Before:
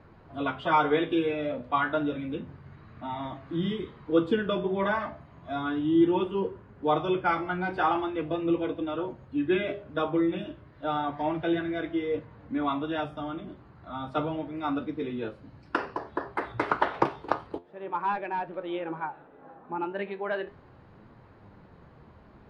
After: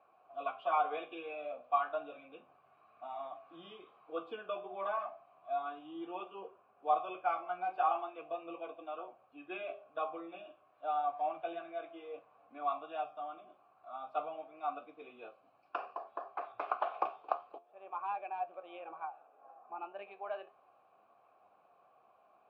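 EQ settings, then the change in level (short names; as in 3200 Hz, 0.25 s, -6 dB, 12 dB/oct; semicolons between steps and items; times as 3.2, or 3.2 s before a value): vowel filter a; low shelf 350 Hz -12 dB; +3.0 dB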